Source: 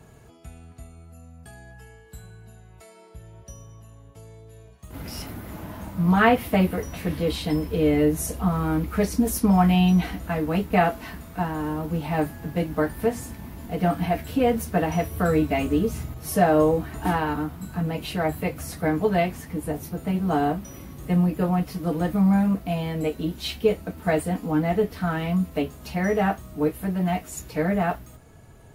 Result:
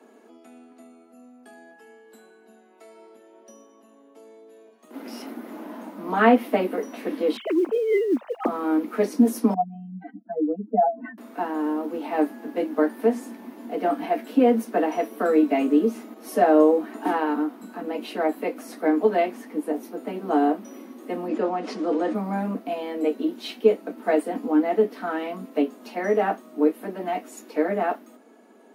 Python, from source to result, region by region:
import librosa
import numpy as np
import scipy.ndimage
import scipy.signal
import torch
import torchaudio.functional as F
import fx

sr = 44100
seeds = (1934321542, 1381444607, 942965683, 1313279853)

y = fx.chain(x, sr, fx.sine_speech(),
    fx.over_compress(threshold_db=-24.0, ratio=-1.0),
    fx.mod_noise(seeds[0], snr_db=25), at=(7.37, 8.48))
y = fx.chain(y, sr, fx.spec_expand(power=3.2),
    fx.peak_eq(hz=1600.0, db=6.0, octaves=0.27), at=(9.54, 11.18))
y = fx.chain(y, sr, fx.lowpass(hz=7600.0, slope=24),
    fx.notch(hz=280.0, q=6.8),
    fx.env_flatten(amount_pct=50), at=(21.28, 22.15))
y = scipy.signal.sosfilt(scipy.signal.butter(16, 220.0, 'highpass', fs=sr, output='sos'), y)
y = fx.tilt_eq(y, sr, slope=-2.5)
y = fx.notch(y, sr, hz=7400.0, q=19.0)